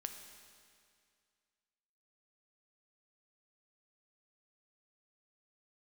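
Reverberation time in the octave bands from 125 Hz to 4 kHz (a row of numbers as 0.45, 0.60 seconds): 2.2, 2.2, 2.2, 2.2, 2.2, 2.1 seconds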